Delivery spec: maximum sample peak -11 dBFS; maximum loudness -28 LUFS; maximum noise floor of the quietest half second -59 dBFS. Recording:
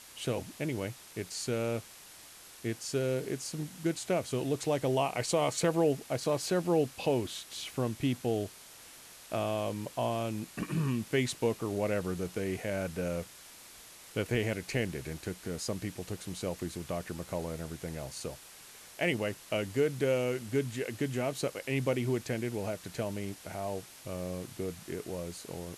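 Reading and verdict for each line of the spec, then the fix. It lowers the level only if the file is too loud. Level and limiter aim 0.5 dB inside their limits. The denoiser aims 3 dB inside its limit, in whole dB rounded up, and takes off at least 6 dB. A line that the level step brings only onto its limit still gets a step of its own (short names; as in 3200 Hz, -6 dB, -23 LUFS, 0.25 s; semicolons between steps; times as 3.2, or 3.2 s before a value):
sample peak -16.5 dBFS: OK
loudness -34.0 LUFS: OK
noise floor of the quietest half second -52 dBFS: fail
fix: denoiser 10 dB, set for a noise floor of -52 dBFS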